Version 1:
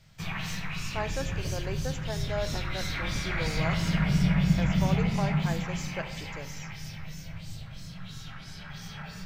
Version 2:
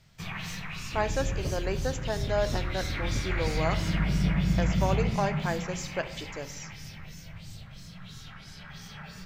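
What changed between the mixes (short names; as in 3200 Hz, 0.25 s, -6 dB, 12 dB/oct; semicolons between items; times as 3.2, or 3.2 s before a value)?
speech +5.0 dB; first sound: send -8.5 dB; second sound +5.0 dB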